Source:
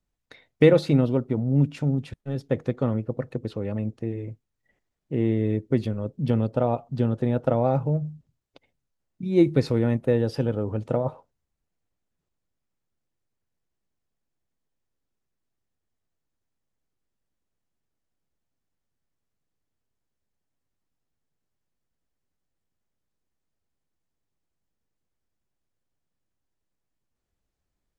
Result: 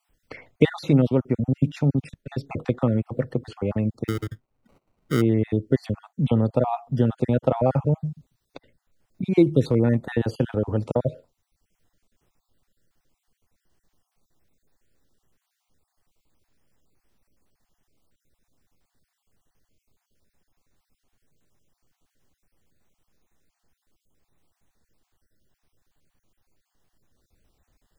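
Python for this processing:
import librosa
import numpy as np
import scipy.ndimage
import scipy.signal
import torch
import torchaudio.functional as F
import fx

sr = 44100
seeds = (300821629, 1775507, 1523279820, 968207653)

y = fx.spec_dropout(x, sr, seeds[0], share_pct=37)
y = fx.sample_hold(y, sr, seeds[1], rate_hz=1700.0, jitter_pct=0, at=(4.07, 5.2), fade=0.02)
y = fx.band_squash(y, sr, depth_pct=40)
y = y * librosa.db_to_amplitude(3.5)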